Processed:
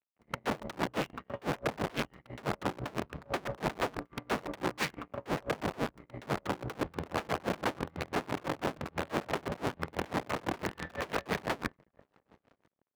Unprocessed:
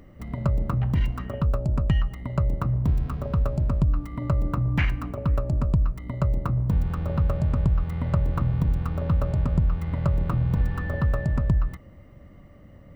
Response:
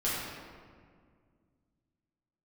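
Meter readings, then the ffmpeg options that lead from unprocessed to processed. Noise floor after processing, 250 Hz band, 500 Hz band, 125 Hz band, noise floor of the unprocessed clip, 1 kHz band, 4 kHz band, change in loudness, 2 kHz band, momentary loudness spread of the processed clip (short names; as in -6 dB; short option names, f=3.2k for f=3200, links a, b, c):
-81 dBFS, -7.5 dB, -0.5 dB, -20.0 dB, -49 dBFS, +1.5 dB, n/a, -10.5 dB, +1.5 dB, 5 LU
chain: -filter_complex "[0:a]asplit=2[a][b];[1:a]atrim=start_sample=2205[c];[b][c]afir=irnorm=-1:irlink=0,volume=-25.5dB[d];[a][d]amix=inputs=2:normalize=0,aeval=exprs='(mod(10*val(0)+1,2)-1)/10':c=same,asplit=2[e][f];[f]adelay=1001,lowpass=f=940:p=1,volume=-17dB,asplit=2[g][h];[h]adelay=1001,lowpass=f=940:p=1,volume=0.52,asplit=2[i][j];[j]adelay=1001,lowpass=f=940:p=1,volume=0.52,asplit=2[k][l];[l]adelay=1001,lowpass=f=940:p=1,volume=0.52,asplit=2[m][n];[n]adelay=1001,lowpass=f=940:p=1,volume=0.52[o];[e][g][i][k][m][o]amix=inputs=6:normalize=0,aeval=exprs='0.126*(cos(1*acos(clip(val(0)/0.126,-1,1)))-cos(1*PI/2))+0.00126*(cos(5*acos(clip(val(0)/0.126,-1,1)))-cos(5*PI/2))+0.00501*(cos(6*acos(clip(val(0)/0.126,-1,1)))-cos(6*PI/2))+0.0141*(cos(7*acos(clip(val(0)/0.126,-1,1)))-cos(7*PI/2))+0.00398*(cos(8*acos(clip(val(0)/0.126,-1,1)))-cos(8*PI/2))':c=same,lowpass=f=2.3k:p=1,aeval=exprs='sgn(val(0))*max(abs(val(0))-0.00299,0)':c=same,highpass=f=310:p=1,aeval=exprs='val(0)*pow(10,-26*(0.5-0.5*cos(2*PI*6*n/s))/20)':c=same"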